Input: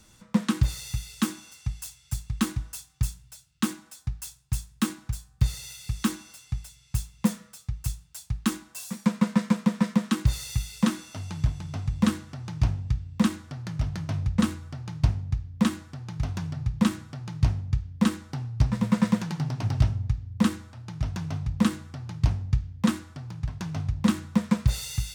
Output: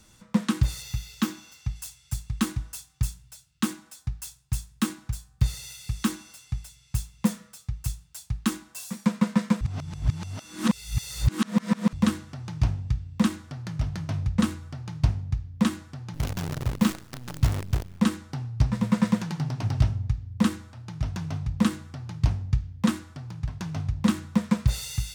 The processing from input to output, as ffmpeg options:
-filter_complex "[0:a]asettb=1/sr,asplit=3[a][b][c];[a]atrim=end=0.824[d];[b]atrim=start=0.82:end=1.76,asetpts=PTS-STARTPTS,afade=t=in:d=0.004:c=qsin,afade=t=out:st=0.936:d=0.004:c=qsin,equalizer=f=9.2k:w=2.2:g=-9[e];[c]atrim=start=1.756[f];[d][e]acrossfade=d=0.004:c1=hsin:c2=qsin[g];[g][f]acrossfade=d=0.004:c1=qsin:c2=hsin,asettb=1/sr,asplit=3[h][i][j];[h]atrim=end=16.144[k];[i]atrim=start=16.14:end=18,asetpts=PTS-STARTPTS,afade=t=in:d=0.004:c=qsin,afade=t=out:st=1.856:d=0.004:c=qsin,acrusher=bits=6:dc=4:mix=0:aa=0.000001[l];[j]atrim=start=17.996[m];[k][l]acrossfade=d=0.004:c1=hsin:c2=qsin[n];[n][m]acrossfade=d=0.004:c1=qsin:c2=hsin,asplit=3[o][p][q];[o]atrim=end=9.612[r];[p]atrim=start=9.608:end=11.932,asetpts=PTS-STARTPTS,areverse[s];[q]atrim=start=11.928[t];[r][s]acrossfade=d=0.004:c1=hsin:c2=hsin[u];[u][t]acrossfade=d=0.004:c1=hsin:c2=hsin"

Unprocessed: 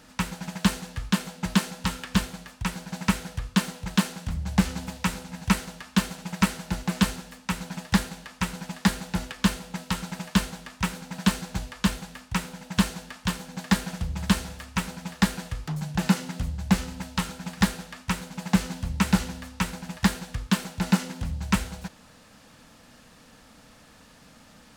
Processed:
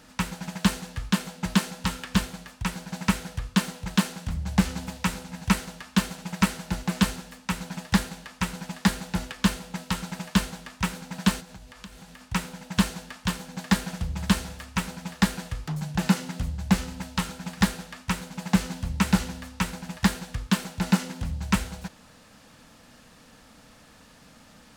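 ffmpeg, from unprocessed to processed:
-filter_complex "[0:a]asettb=1/sr,asplit=3[a][b][c];[a]atrim=end=11.404[d];[b]atrim=start=11.4:end=12.21,asetpts=PTS-STARTPTS,afade=t=in:d=0.004:c=qsin,afade=t=out:st=0.806:d=0.004:c=qsin,acompressor=threshold=-43dB:ratio=4:attack=3.2:release=140:knee=1:detection=peak[e];[c]atrim=start=12.206[f];[d][e]acrossfade=d=0.004:c1=hsin:c2=qsin[g];[g][f]acrossfade=d=0.004:c1=qsin:c2=hsin"

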